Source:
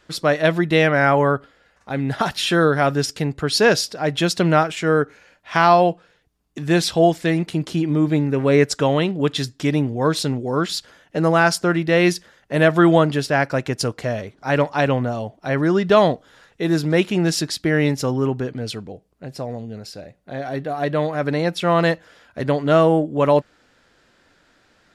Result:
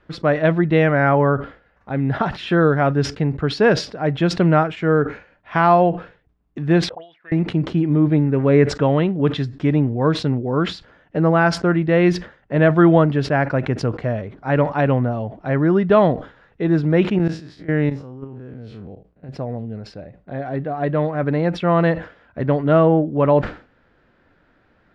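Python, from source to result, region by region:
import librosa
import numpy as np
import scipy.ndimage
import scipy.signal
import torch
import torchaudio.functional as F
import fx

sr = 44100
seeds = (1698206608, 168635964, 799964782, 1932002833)

y = fx.chain(x, sr, fx.auto_wah(base_hz=420.0, top_hz=3700.0, q=8.8, full_db=-10.5, direction='up'),
    fx.air_absorb(metres=140.0), at=(6.89, 7.32))
y = fx.chain(y, sr, fx.spec_blur(span_ms=85.0),
    fx.high_shelf(hz=2800.0, db=4.5),
    fx.level_steps(step_db=19), at=(17.18, 19.29))
y = scipy.signal.sosfilt(scipy.signal.butter(2, 2100.0, 'lowpass', fs=sr, output='sos'), y)
y = fx.low_shelf(y, sr, hz=260.0, db=6.0)
y = fx.sustainer(y, sr, db_per_s=150.0)
y = y * librosa.db_to_amplitude(-1.0)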